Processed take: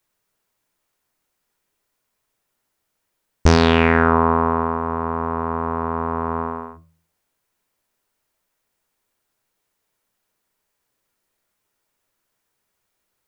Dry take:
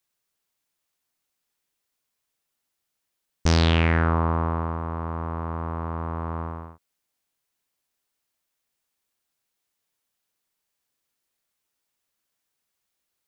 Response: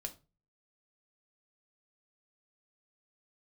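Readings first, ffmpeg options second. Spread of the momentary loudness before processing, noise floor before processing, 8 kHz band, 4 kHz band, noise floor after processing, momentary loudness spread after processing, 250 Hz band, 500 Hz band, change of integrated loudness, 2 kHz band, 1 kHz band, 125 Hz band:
12 LU, -81 dBFS, no reading, +3.0 dB, -76 dBFS, 11 LU, +7.5 dB, +10.5 dB, +6.0 dB, +7.5 dB, +9.5 dB, +1.0 dB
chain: -filter_complex "[0:a]asplit=2[s0][s1];[1:a]atrim=start_sample=2205,lowpass=2300[s2];[s1][s2]afir=irnorm=-1:irlink=0,volume=1.33[s3];[s0][s3]amix=inputs=2:normalize=0,volume=1.58"

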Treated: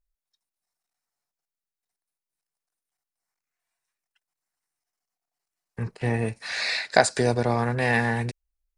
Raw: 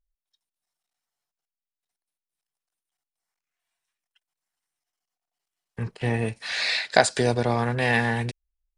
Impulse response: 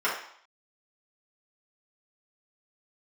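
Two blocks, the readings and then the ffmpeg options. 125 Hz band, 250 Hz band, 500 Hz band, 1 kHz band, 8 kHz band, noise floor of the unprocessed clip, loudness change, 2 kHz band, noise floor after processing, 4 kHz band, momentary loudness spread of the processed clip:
0.0 dB, 0.0 dB, 0.0 dB, 0.0 dB, 0.0 dB, under -85 dBFS, -0.5 dB, -1.0 dB, under -85 dBFS, -2.5 dB, 10 LU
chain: -af "equalizer=f=3200:w=3.1:g=-8"

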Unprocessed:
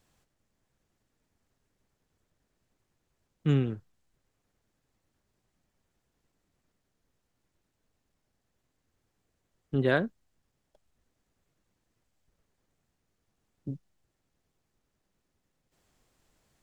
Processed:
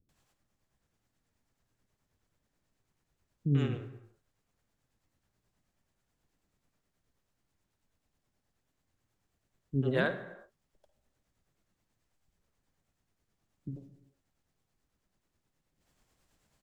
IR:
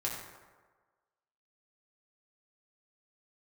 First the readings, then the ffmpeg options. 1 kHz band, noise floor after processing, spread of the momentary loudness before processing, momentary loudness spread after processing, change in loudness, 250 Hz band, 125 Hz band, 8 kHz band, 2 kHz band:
-3.5 dB, -82 dBFS, 17 LU, 19 LU, -3.0 dB, -3.0 dB, -2.0 dB, no reading, -2.5 dB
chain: -filter_complex "[0:a]tremolo=f=9.3:d=0.46,acrossover=split=390[s0][s1];[s1]adelay=90[s2];[s0][s2]amix=inputs=2:normalize=0,asplit=2[s3][s4];[1:a]atrim=start_sample=2205,afade=t=out:st=0.38:d=0.01,atrim=end_sample=17199,adelay=52[s5];[s4][s5]afir=irnorm=-1:irlink=0,volume=0.211[s6];[s3][s6]amix=inputs=2:normalize=0"

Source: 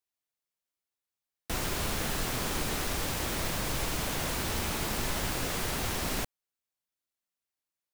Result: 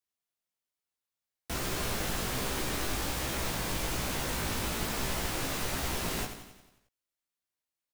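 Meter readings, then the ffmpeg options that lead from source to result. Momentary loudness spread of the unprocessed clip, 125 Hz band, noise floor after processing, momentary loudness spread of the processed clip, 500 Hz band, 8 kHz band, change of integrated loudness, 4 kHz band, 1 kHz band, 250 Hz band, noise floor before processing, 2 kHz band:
2 LU, -1.0 dB, under -85 dBFS, 2 LU, -0.5 dB, -1.0 dB, -1.0 dB, -1.0 dB, -1.0 dB, -0.5 dB, under -85 dBFS, -0.5 dB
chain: -af "aecho=1:1:89|178|267|356|445|534|623:0.335|0.188|0.105|0.0588|0.0329|0.0184|0.0103,flanger=delay=15:depth=4.1:speed=1.2,volume=1.19"

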